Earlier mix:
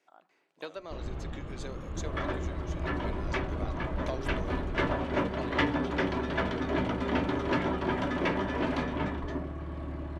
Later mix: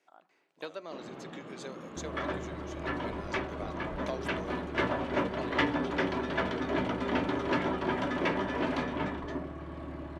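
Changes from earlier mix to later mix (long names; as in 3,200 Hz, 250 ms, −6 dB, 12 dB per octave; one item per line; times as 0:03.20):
first sound: add high-pass filter 180 Hz 24 dB per octave
second sound: add low-shelf EQ 89 Hz −12 dB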